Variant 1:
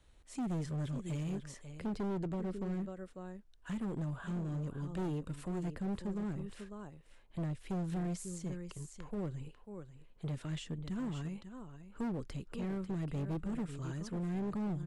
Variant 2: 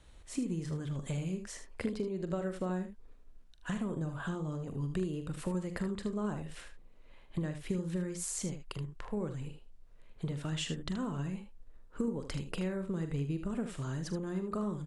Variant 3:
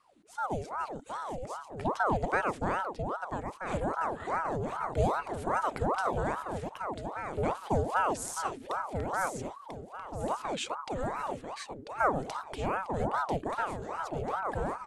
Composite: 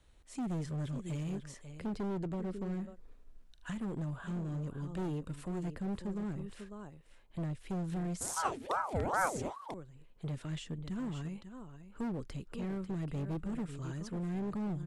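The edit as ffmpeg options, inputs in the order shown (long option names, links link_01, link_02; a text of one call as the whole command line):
ffmpeg -i take0.wav -i take1.wav -i take2.wav -filter_complex "[0:a]asplit=3[link_01][link_02][link_03];[link_01]atrim=end=3.01[link_04];[1:a]atrim=start=2.77:end=3.81[link_05];[link_02]atrim=start=3.57:end=8.212[link_06];[2:a]atrim=start=8.208:end=9.742[link_07];[link_03]atrim=start=9.738[link_08];[link_04][link_05]acrossfade=duration=0.24:curve1=tri:curve2=tri[link_09];[link_09][link_06]acrossfade=duration=0.24:curve1=tri:curve2=tri[link_10];[link_10][link_07]acrossfade=duration=0.004:curve1=hsin:curve2=hsin[link_11];[link_11][link_08]acrossfade=duration=0.004:curve1=hsin:curve2=hsin" out.wav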